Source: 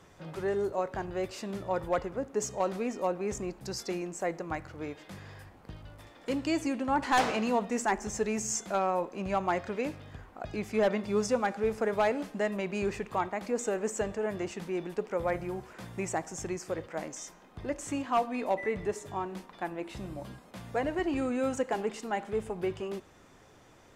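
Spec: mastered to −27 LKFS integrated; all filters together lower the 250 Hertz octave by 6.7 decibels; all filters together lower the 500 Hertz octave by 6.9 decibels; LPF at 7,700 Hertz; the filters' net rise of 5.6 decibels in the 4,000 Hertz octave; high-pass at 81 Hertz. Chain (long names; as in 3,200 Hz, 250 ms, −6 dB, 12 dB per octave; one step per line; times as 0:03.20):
high-pass filter 81 Hz
low-pass filter 7,700 Hz
parametric band 250 Hz −6.5 dB
parametric band 500 Hz −7 dB
parametric band 4,000 Hz +8 dB
level +9 dB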